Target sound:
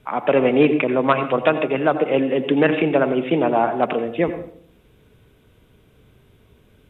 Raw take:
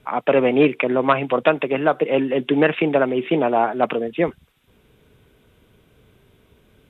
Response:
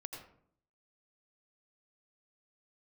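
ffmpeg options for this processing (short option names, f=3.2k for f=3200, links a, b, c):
-filter_complex "[0:a]asplit=2[a][b];[1:a]atrim=start_sample=2205,lowshelf=f=250:g=6.5[c];[b][c]afir=irnorm=-1:irlink=0,volume=-0.5dB[d];[a][d]amix=inputs=2:normalize=0,volume=-4.5dB"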